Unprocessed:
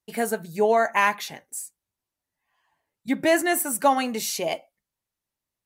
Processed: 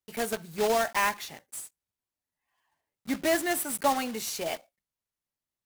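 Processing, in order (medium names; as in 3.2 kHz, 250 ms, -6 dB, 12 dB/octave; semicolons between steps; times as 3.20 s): block-companded coder 3-bit; trim -6 dB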